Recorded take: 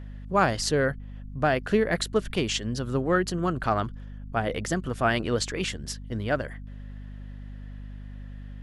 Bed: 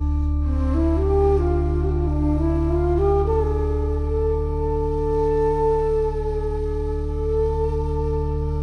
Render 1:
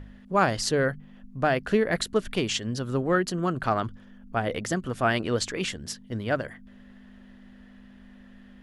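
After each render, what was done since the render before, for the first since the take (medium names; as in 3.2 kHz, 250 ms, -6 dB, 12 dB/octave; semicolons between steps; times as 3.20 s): de-hum 50 Hz, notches 3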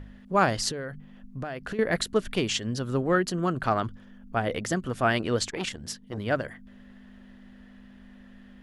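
0.71–1.79 s: compression 12:1, threshold -30 dBFS; 5.48–6.18 s: transformer saturation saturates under 970 Hz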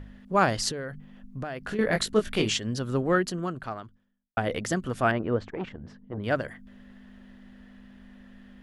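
1.64–2.55 s: doubling 19 ms -4 dB; 3.18–4.37 s: fade out quadratic; 5.11–6.24 s: low-pass 1.3 kHz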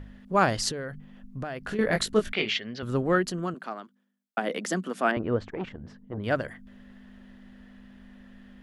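2.33–2.83 s: cabinet simulation 260–4300 Hz, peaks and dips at 310 Hz -9 dB, 520 Hz -4 dB, 1 kHz -6 dB, 2.1 kHz +9 dB; 3.54–5.17 s: Chebyshev high-pass 180 Hz, order 5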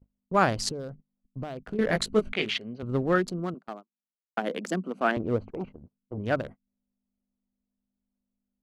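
local Wiener filter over 25 samples; gate -39 dBFS, range -34 dB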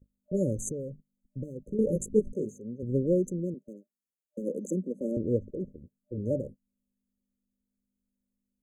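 FFT band-reject 600–6200 Hz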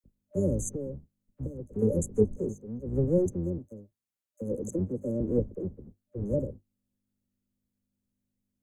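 octave divider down 1 oct, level -4 dB; phase dispersion lows, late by 41 ms, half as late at 940 Hz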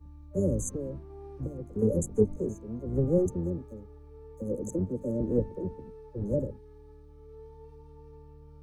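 add bed -27.5 dB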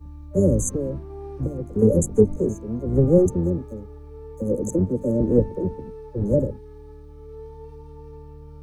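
trim +9 dB; peak limiter -3 dBFS, peak gain reduction 2 dB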